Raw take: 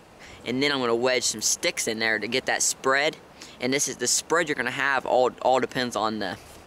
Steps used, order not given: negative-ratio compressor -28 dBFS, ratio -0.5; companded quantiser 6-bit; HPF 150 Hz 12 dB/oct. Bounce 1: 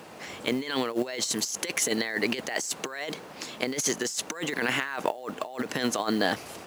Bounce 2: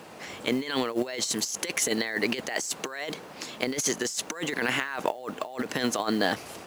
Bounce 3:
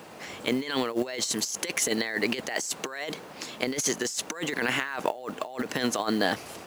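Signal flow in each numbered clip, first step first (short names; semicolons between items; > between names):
negative-ratio compressor > companded quantiser > HPF; HPF > negative-ratio compressor > companded quantiser; companded quantiser > HPF > negative-ratio compressor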